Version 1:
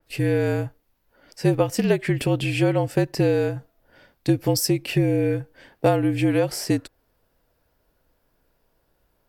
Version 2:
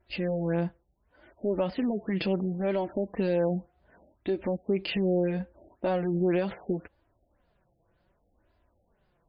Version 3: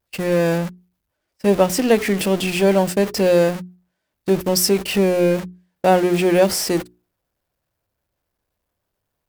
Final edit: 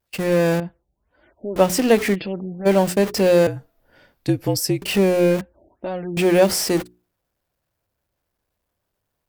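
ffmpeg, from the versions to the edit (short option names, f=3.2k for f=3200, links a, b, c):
-filter_complex "[1:a]asplit=3[a][b][c];[2:a]asplit=5[d][e][f][g][h];[d]atrim=end=0.602[i];[a]atrim=start=0.598:end=1.562[j];[e]atrim=start=1.558:end=2.16[k];[b]atrim=start=2.14:end=2.67[l];[f]atrim=start=2.65:end=3.472[m];[0:a]atrim=start=3.468:end=4.822[n];[g]atrim=start=4.818:end=5.412[o];[c]atrim=start=5.408:end=6.172[p];[h]atrim=start=6.168[q];[i][j]acrossfade=d=0.004:c1=hsin:c2=hsin[r];[r][k]acrossfade=d=0.004:c1=hsin:c2=hsin[s];[s][l]acrossfade=d=0.02:c1=tri:c2=tri[t];[t][m]acrossfade=d=0.02:c1=tri:c2=tri[u];[u][n]acrossfade=d=0.004:c1=hsin:c2=hsin[v];[v][o]acrossfade=d=0.004:c1=hsin:c2=hsin[w];[w][p]acrossfade=d=0.004:c1=hsin:c2=hsin[x];[x][q]acrossfade=d=0.004:c1=hsin:c2=hsin"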